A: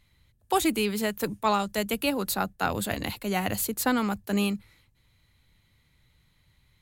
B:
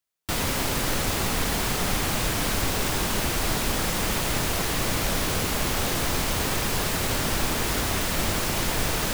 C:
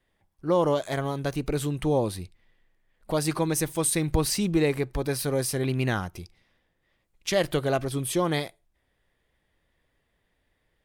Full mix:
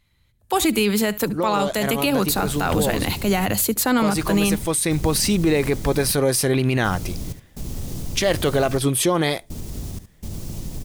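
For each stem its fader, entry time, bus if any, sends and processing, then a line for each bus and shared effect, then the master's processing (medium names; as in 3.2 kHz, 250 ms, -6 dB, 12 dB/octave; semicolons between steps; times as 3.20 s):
+1.5 dB, 0.00 s, bus A, no send, echo send -14 dB, none
+0.5 dB, 2.00 s, no bus, no send, echo send -11.5 dB, FFT filter 160 Hz 0 dB, 1.6 kHz -26 dB, 6.1 kHz -11 dB; peak limiter -22 dBFS, peak gain reduction 7 dB; trance gate ".xxxxx...xx" 62 bpm -24 dB
-3.5 dB, 0.90 s, bus A, no send, no echo send, bass shelf 140 Hz -6.5 dB; peak limiter -18.5 dBFS, peak gain reduction 5.5 dB
bus A: 0.0 dB, level rider gain up to 14.5 dB; peak limiter -6.5 dBFS, peak gain reduction 5.5 dB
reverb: none
echo: delay 72 ms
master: gain riding 2 s; peak limiter -10 dBFS, peak gain reduction 4.5 dB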